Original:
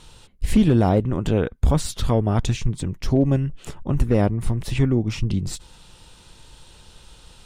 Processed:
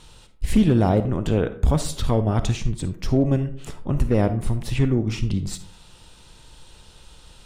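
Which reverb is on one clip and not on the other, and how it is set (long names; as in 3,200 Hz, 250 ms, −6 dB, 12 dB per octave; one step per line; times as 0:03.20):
comb and all-pass reverb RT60 0.56 s, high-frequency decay 0.45×, pre-delay 10 ms, DRR 10.5 dB
level −1 dB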